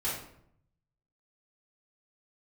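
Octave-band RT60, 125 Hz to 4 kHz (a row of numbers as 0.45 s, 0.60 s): 1.2 s, 0.85 s, 0.75 s, 0.65 s, 0.55 s, 0.45 s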